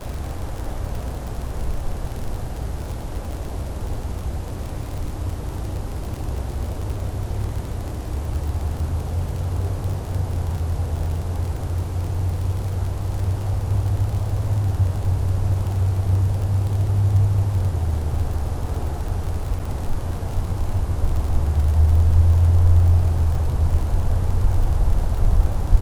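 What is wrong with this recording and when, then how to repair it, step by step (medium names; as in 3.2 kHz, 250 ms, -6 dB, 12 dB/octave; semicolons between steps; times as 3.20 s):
crackle 37 per s -26 dBFS
19.59–19.60 s: dropout 7.1 ms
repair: de-click; interpolate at 19.59 s, 7.1 ms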